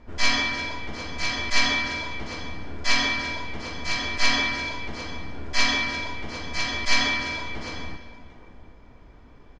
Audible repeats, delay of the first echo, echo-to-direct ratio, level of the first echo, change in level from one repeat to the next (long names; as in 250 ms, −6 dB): 2, 338 ms, −12.5 dB, −15.0 dB, repeats not evenly spaced